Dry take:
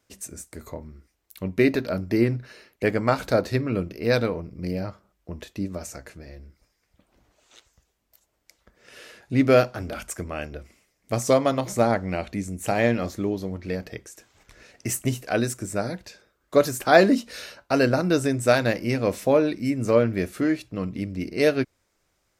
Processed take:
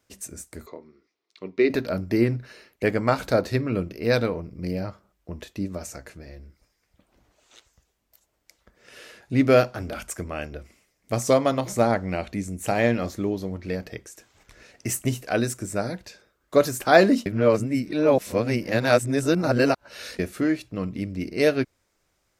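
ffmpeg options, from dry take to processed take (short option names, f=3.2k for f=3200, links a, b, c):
-filter_complex "[0:a]asettb=1/sr,asplit=3[a][b][c];[a]atrim=end=0.664[d];[b]atrim=start=0.66:end=1.7,asetpts=PTS-STARTPTS,afade=t=in:d=0.004:c=qsin,afade=t=out:st=1.036:d=0.004:c=qsin,highpass=350,equalizer=f=400:t=q:w=4:g=5,equalizer=f=580:t=q:w=4:g=-7,equalizer=f=840:t=q:w=4:g=-6,equalizer=f=1.6k:t=q:w=4:g=-8,equalizer=f=2.9k:t=q:w=4:g=-5,lowpass=f=4.9k:w=0.5412,lowpass=f=4.9k:w=1.3066[e];[c]atrim=start=1.696[f];[d][e]acrossfade=d=0.004:c1=hsin:c2=qsin[g];[g][f]acrossfade=d=0.004:c1=qsin:c2=hsin,asplit=3[h][i][j];[h]atrim=end=17.262[k];[i]atrim=start=17.258:end=20.192,asetpts=PTS-STARTPTS,areverse[l];[j]atrim=start=20.188[m];[k][l]acrossfade=d=0.004:c1=hsin:c2=hsin[n];[n][m]acrossfade=d=0.004:c1=hsin:c2=hsin"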